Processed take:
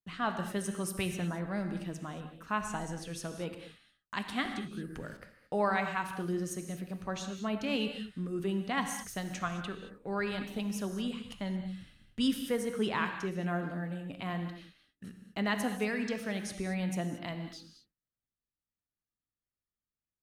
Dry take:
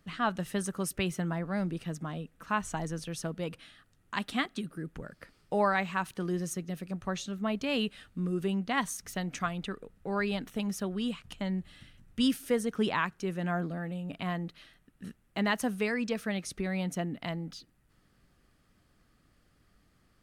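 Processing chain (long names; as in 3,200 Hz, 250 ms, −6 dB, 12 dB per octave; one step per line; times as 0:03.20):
noise gate −55 dBFS, range −31 dB
reverb whose tail is shaped and stops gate 250 ms flat, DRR 6 dB
0:04.45–0:05.17: multiband upward and downward compressor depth 100%
level −3 dB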